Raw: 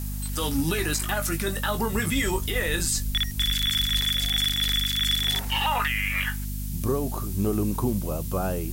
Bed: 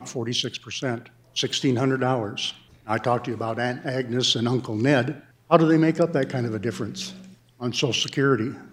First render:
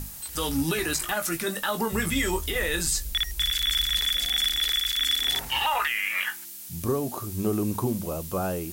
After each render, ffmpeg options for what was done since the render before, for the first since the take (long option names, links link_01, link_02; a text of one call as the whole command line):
ffmpeg -i in.wav -af "bandreject=frequency=50:width_type=h:width=6,bandreject=frequency=100:width_type=h:width=6,bandreject=frequency=150:width_type=h:width=6,bandreject=frequency=200:width_type=h:width=6,bandreject=frequency=250:width_type=h:width=6" out.wav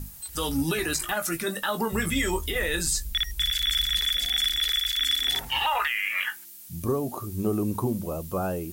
ffmpeg -i in.wav -af "afftdn=noise_reduction=7:noise_floor=-41" out.wav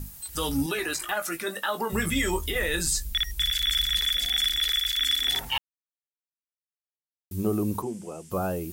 ffmpeg -i in.wav -filter_complex "[0:a]asettb=1/sr,asplit=3[link_01][link_02][link_03];[link_01]atrim=end=0.664[link_04];[link_02]atrim=start=0.66:end=1.9,asetpts=PTS-STARTPTS,afade=type=in:duration=0.004:curve=qsin,afade=type=out:start_time=1.236:duration=0.004:curve=qsin,bass=frequency=250:gain=-12,treble=frequency=4000:gain=-4[link_05];[link_03]atrim=start=1.896[link_06];[link_04][link_05]acrossfade=duration=0.004:curve1=hsin:curve2=qsin[link_07];[link_07][link_06]acrossfade=duration=0.004:curve1=qsin:curve2=hsin,asplit=3[link_08][link_09][link_10];[link_08]afade=type=out:start_time=7.81:duration=0.02[link_11];[link_09]highpass=260,equalizer=frequency=270:width_type=q:width=4:gain=-8,equalizer=frequency=580:width_type=q:width=4:gain=-10,equalizer=frequency=1100:width_type=q:width=4:gain=-8,equalizer=frequency=4000:width_type=q:width=4:gain=-9,equalizer=frequency=8200:width_type=q:width=4:gain=5,lowpass=frequency=8800:width=0.5412,lowpass=frequency=8800:width=1.3066,afade=type=in:start_time=7.81:duration=0.02,afade=type=out:start_time=8.3:duration=0.02[link_12];[link_10]afade=type=in:start_time=8.3:duration=0.02[link_13];[link_11][link_12][link_13]amix=inputs=3:normalize=0,asplit=3[link_14][link_15][link_16];[link_14]atrim=end=5.58,asetpts=PTS-STARTPTS,afade=type=out:start_time=5.576:duration=0.004:curve=hsin[link_17];[link_15]atrim=start=5.58:end=7.31,asetpts=PTS-STARTPTS,volume=0[link_18];[link_16]atrim=start=7.31,asetpts=PTS-STARTPTS,afade=type=in:duration=0.004:curve=hsin[link_19];[link_17][link_18][link_19]concat=n=3:v=0:a=1" out.wav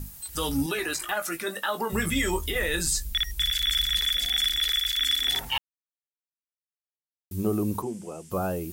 ffmpeg -i in.wav -af anull out.wav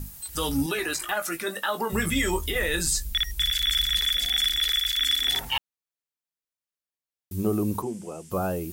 ffmpeg -i in.wav -af "volume=1dB" out.wav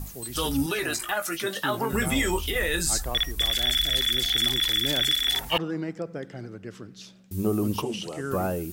ffmpeg -i in.wav -i bed.wav -filter_complex "[1:a]volume=-12.5dB[link_01];[0:a][link_01]amix=inputs=2:normalize=0" out.wav